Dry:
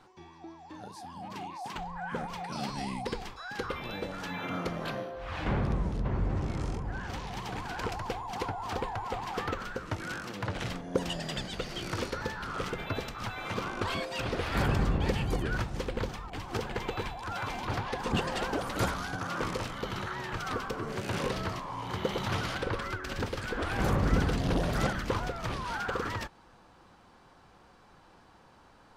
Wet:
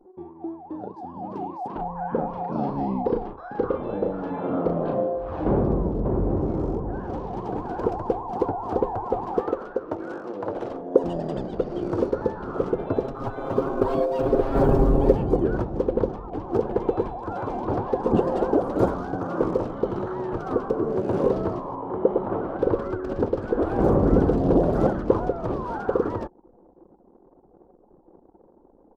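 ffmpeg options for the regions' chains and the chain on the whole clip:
-filter_complex "[0:a]asettb=1/sr,asplit=3[s0][s1][s2];[s0]atrim=end=1.674[s3];[s1]atrim=start=1.67:end=5.18,asetpts=PTS-STARTPTS,afade=t=in:d=0.004:c=qsin,afade=t=out:st=3.506:d=0.004:c=qsin,lowpass=3600,equalizer=f=370:t=o:w=0.23:g=-4.5,asplit=2[s4][s5];[s5]adelay=36,volume=0.562[s6];[s4][s6]amix=inputs=2:normalize=0,atrim=end_sample=154791[s7];[s2]atrim=start=5.176[s8];[s3][s7]acrossfade=d=0.004:c1=hsin:c2=qsin[s9];[s9][s8]acrossfade=d=0.004:c1=qsin:c2=hsin,asettb=1/sr,asplit=3[s10][s11][s12];[s10]atrim=end=9.404[s13];[s11]atrim=start=9.4:end=11.04,asetpts=PTS-STARTPTS,afade=t=in:d=0.004:c=qsin,afade=t=out:st=1.636:d=0.004:c=qsin,bass=f=250:g=-12,treble=f=4000:g=0,bandreject=f=60:t=h:w=6,bandreject=f=120:t=h:w=6,bandreject=f=180:t=h:w=6[s14];[s12]atrim=start=11.036[s15];[s13][s14]acrossfade=d=0.004:c1=hsin:c2=qsin[s16];[s16][s15]acrossfade=d=0.004:c1=qsin:c2=hsin,asettb=1/sr,asplit=3[s17][s18][s19];[s17]atrim=end=13.034[s20];[s18]atrim=start=13.03:end=15.17,asetpts=PTS-STARTPTS,afade=t=in:d=0.004:c=qsin,afade=t=out:st=2.136:d=0.004:c=qsin,aecho=1:1:7.4:0.64,atrim=end_sample=94374,acrusher=bits=5:mode=log:mix=0:aa=0.000001,asubboost=boost=7:cutoff=50[s21];[s19]atrim=start=15.166[s22];[s20][s21]acrossfade=d=0.004:c1=hsin:c2=qsin[s23];[s23][s22]acrossfade=d=0.004:c1=qsin:c2=hsin,asettb=1/sr,asplit=3[s24][s25][s26];[s24]atrim=end=21.754[s27];[s25]atrim=start=21.75:end=22.59,asetpts=PTS-STARTPTS,afade=t=in:d=0.004:c=qsin,afade=t=out:st=0.836:d=0.004:c=qsin,lowpass=1600,equalizer=f=100:w=0.72:g=-9[s28];[s26]atrim=start=22.586[s29];[s27][s28]acrossfade=d=0.004:c1=hsin:c2=qsin[s30];[s30][s29]acrossfade=d=0.004:c1=qsin:c2=hsin,firequalizer=gain_entry='entry(110,0);entry(350,12);entry(2000,-17)':delay=0.05:min_phase=1,anlmdn=0.01,volume=1.5"

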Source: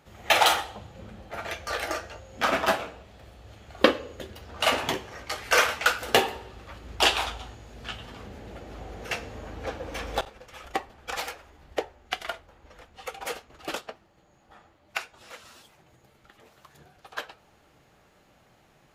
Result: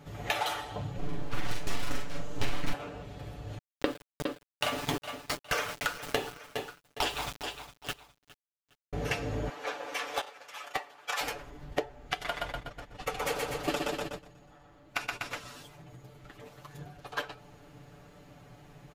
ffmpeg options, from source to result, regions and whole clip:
-filter_complex "[0:a]asettb=1/sr,asplit=3[s0][s1][s2];[s0]atrim=end=0.984[s3];[s1]atrim=start=0.98:end=2.73,asetpts=PTS-STARTPTS,afade=t=in:d=0.004:c=qsin,afade=t=out:st=1.746:d=0.004:c=qsin,aeval=exprs='abs(val(0))':c=same,asplit=2[s4][s5];[s5]adelay=43,volume=0.75[s6];[s4][s6]amix=inputs=2:normalize=0,atrim=end_sample=77175[s7];[s2]atrim=start=2.726[s8];[s3][s7]acrossfade=d=0.004:c1=hsin:c2=qsin[s9];[s9][s8]acrossfade=d=0.004:c1=qsin:c2=hsin,asettb=1/sr,asplit=3[s10][s11][s12];[s10]atrim=end=3.584[s13];[s11]atrim=start=3.58:end=8.93,asetpts=PTS-STARTPTS,afade=t=in:d=0.004:c=qsin,afade=t=out:st=5.346:d=0.004:c=qsin,aeval=exprs='val(0)*gte(abs(val(0)),0.0335)':c=same,aecho=1:1:410|820:0.1|0.031,atrim=end_sample=235935[s14];[s12]atrim=start=8.926[s15];[s13][s14]acrossfade=d=0.004:c1=hsin:c2=qsin[s16];[s16][s15]acrossfade=d=0.004:c1=qsin:c2=hsin,asettb=1/sr,asplit=3[s17][s18][s19];[s17]atrim=end=9.494[s20];[s18]atrim=start=9.49:end=11.21,asetpts=PTS-STARTPTS,afade=t=in:d=0.004:c=qsin,afade=t=out:st=1.716:d=0.004:c=qsin,highpass=780,asoftclip=type=hard:threshold=0.0794[s21];[s19]atrim=start=11.206[s22];[s20][s21]acrossfade=d=0.004:c1=hsin:c2=qsin[s23];[s23][s22]acrossfade=d=0.004:c1=qsin:c2=hsin,asettb=1/sr,asplit=3[s24][s25][s26];[s24]atrim=end=12.244[s27];[s25]atrim=start=12.24:end=15.39,asetpts=PTS-STARTPTS,afade=t=in:d=0.004:c=qsin,afade=t=out:st=3.146:d=0.004:c=qsin,acompressor=mode=upward:threshold=0.00891:ratio=2.5:attack=3.2:release=140:knee=2.83:detection=peak,aecho=1:1:122|244|366|488|610|732|854|976:0.631|0.366|0.212|0.123|0.0714|0.0414|0.024|0.0139,atrim=end_sample=138915,agate=range=0.2:threshold=0.00562:ratio=16:release=100:detection=peak[s28];[s26]atrim=start=15.386[s29];[s27][s28]acrossfade=d=0.004:c1=hsin:c2=qsin[s30];[s30][s29]acrossfade=d=0.004:c1=qsin:c2=hsin,aecho=1:1:6.9:0.83,acompressor=threshold=0.0355:ratio=16,lowshelf=f=390:g=9.5"

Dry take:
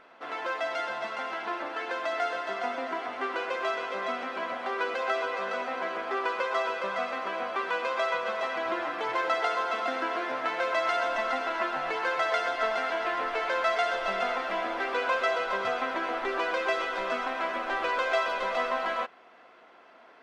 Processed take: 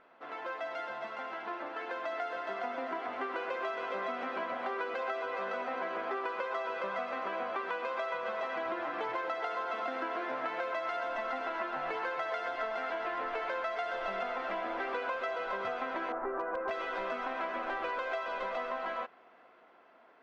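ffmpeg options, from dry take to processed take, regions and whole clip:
-filter_complex "[0:a]asettb=1/sr,asplit=3[s0][s1][s2];[s0]atrim=end=16.124[s3];[s1]atrim=start=16.12:end=16.71,asetpts=PTS-STARTPTS,afade=t=in:d=0.004:c=qsin,afade=t=out:st=0.586:d=0.004:c=qsin,lowpass=f=1500:w=0.5412,lowpass=f=1500:w=1.3066,aeval=exprs='0.0841*(abs(mod(val(0)/0.0841+3,4)-2)-1)':c=same[s4];[s2]atrim=start=16.706[s5];[s3][s4]acrossfade=d=0.004:c1=hsin:c2=qsin[s6];[s6][s5]acrossfade=d=0.004:c1=qsin:c2=hsin,dynaudnorm=f=790:g=7:m=2.24,lowpass=f=2200:p=1,acompressor=threshold=0.0447:ratio=6,volume=0.531"

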